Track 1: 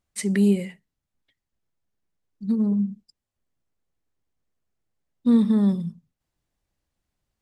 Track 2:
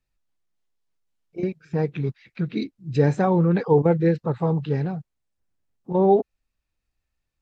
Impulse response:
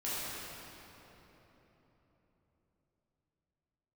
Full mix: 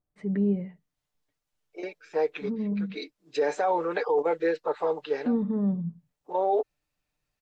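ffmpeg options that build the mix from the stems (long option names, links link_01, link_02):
-filter_complex "[0:a]lowpass=1000,volume=-4.5dB,asplit=2[link_01][link_02];[1:a]highpass=frequency=440:width=0.5412,highpass=frequency=440:width=1.3066,adelay=400,volume=1.5dB[link_03];[link_02]apad=whole_len=344625[link_04];[link_03][link_04]sidechaincompress=threshold=-32dB:ratio=5:attack=47:release=493[link_05];[link_01][link_05]amix=inputs=2:normalize=0,aecho=1:1:6.7:0.48,alimiter=limit=-17dB:level=0:latency=1:release=16"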